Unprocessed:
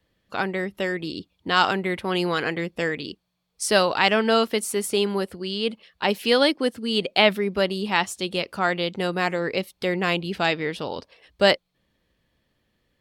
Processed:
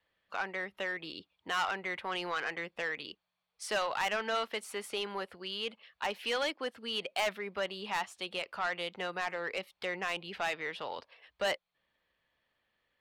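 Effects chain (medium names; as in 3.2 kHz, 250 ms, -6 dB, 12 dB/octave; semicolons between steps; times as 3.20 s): three-band isolator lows -16 dB, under 600 Hz, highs -15 dB, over 3.7 kHz; in parallel at -3 dB: compression, threshold -33 dBFS, peak gain reduction 17 dB; on the sum: saturation -18.5 dBFS, distortion -10 dB; trim -7 dB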